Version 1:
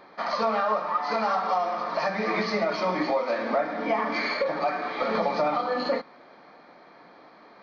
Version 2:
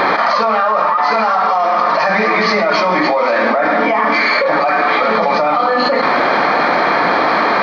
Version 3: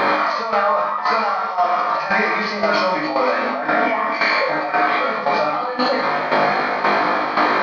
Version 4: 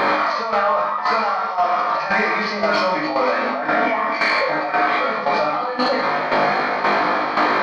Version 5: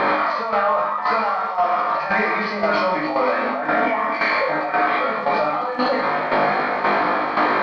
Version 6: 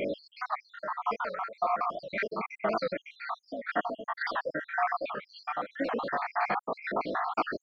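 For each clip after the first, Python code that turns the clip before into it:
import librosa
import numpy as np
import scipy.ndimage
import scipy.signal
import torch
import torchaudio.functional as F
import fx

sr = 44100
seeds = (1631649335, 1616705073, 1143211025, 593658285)

y1 = fx.peak_eq(x, sr, hz=1500.0, db=7.0, octaves=2.6)
y1 = fx.env_flatten(y1, sr, amount_pct=100)
y1 = y1 * 10.0 ** (2.0 / 20.0)
y2 = fx.comb_fb(y1, sr, f0_hz=51.0, decay_s=0.76, harmonics='all', damping=0.0, mix_pct=90)
y2 = fx.tremolo_shape(y2, sr, shape='saw_down', hz=1.9, depth_pct=65)
y2 = y2 * 10.0 ** (8.0 / 20.0)
y3 = 10.0 ** (-6.5 / 20.0) * np.tanh(y2 / 10.0 ** (-6.5 / 20.0))
y4 = fx.dmg_crackle(y3, sr, seeds[0], per_s=150.0, level_db=-32.0)
y4 = fx.air_absorb(y4, sr, metres=160.0)
y5 = fx.spec_dropout(y4, sr, seeds[1], share_pct=73)
y5 = fx.record_warp(y5, sr, rpm=78.0, depth_cents=160.0)
y5 = y5 * 10.0 ** (-7.5 / 20.0)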